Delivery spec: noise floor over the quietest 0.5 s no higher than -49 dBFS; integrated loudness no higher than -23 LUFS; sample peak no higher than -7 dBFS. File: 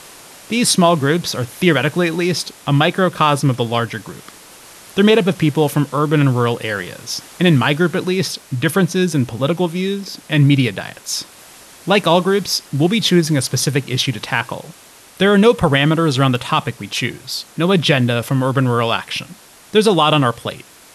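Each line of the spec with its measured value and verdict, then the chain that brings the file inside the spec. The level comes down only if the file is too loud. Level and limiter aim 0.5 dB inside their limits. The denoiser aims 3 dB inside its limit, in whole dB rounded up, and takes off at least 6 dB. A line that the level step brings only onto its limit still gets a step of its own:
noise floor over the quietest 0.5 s -42 dBFS: fail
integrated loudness -16.5 LUFS: fail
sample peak -2.0 dBFS: fail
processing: denoiser 6 dB, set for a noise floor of -42 dBFS; gain -7 dB

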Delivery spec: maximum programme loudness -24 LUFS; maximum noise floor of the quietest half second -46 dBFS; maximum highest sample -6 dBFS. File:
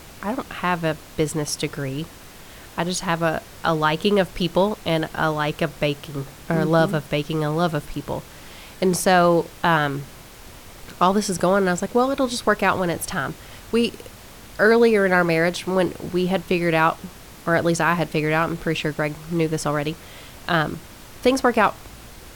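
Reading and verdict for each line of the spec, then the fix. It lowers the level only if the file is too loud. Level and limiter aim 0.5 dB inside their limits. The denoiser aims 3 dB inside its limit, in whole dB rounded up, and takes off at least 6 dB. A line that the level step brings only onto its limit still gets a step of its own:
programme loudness -21.5 LUFS: fail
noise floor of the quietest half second -42 dBFS: fail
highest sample -5.5 dBFS: fail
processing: denoiser 6 dB, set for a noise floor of -42 dBFS; gain -3 dB

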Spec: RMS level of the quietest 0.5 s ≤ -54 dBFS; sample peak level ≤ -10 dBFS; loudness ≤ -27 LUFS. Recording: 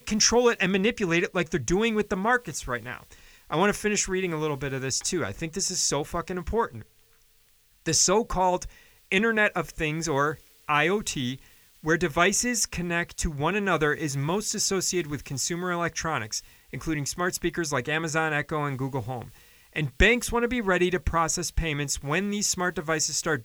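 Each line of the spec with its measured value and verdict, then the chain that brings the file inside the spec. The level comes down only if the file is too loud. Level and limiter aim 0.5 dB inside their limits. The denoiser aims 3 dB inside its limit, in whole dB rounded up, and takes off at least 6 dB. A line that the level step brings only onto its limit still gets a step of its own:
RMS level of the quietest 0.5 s -61 dBFS: OK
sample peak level -5.0 dBFS: fail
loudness -26.0 LUFS: fail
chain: gain -1.5 dB; limiter -10.5 dBFS

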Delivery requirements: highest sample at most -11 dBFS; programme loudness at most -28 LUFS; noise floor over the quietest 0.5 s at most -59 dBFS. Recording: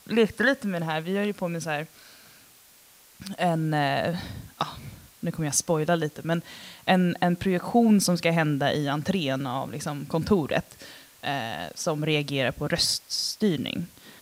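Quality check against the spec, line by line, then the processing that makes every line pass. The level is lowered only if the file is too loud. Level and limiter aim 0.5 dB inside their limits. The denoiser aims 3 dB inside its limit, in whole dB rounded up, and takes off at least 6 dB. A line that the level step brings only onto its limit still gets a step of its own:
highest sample -8.5 dBFS: fail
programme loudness -26.0 LUFS: fail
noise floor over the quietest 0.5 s -55 dBFS: fail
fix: denoiser 6 dB, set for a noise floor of -55 dBFS; gain -2.5 dB; limiter -11.5 dBFS

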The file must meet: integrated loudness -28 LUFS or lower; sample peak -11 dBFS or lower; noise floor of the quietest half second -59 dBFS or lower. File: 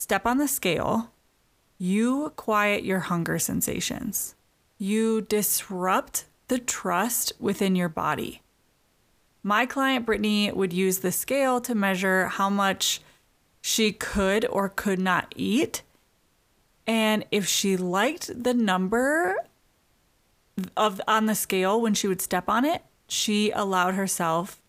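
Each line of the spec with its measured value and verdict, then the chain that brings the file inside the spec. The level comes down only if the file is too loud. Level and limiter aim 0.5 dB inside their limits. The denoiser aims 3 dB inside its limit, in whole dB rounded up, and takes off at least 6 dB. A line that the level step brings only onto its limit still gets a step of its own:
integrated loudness -25.0 LUFS: fail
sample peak -7.5 dBFS: fail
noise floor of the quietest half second -66 dBFS: OK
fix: gain -3.5 dB; limiter -11.5 dBFS

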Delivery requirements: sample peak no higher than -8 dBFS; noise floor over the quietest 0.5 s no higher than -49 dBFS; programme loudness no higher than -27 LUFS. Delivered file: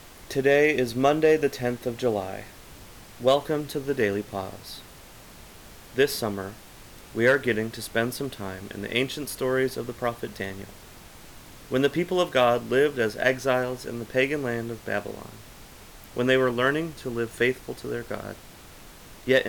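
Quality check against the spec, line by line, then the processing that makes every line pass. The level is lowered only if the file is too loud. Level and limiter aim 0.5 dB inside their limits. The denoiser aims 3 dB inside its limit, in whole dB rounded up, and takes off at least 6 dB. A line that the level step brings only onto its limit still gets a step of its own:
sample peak -8.5 dBFS: OK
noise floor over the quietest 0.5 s -47 dBFS: fail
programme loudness -25.5 LUFS: fail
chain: denoiser 6 dB, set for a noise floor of -47 dBFS; gain -2 dB

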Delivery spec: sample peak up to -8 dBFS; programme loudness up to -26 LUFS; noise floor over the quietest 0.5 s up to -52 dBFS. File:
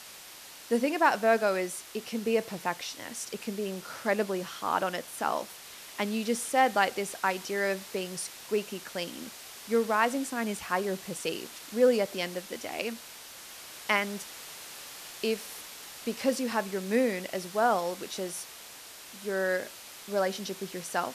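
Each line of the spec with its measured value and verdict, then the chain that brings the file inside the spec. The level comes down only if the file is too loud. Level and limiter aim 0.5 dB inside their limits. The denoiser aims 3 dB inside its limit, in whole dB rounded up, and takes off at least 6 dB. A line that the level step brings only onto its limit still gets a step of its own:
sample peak -11.0 dBFS: OK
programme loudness -30.5 LUFS: OK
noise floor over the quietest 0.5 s -48 dBFS: fail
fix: denoiser 7 dB, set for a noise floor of -48 dBFS

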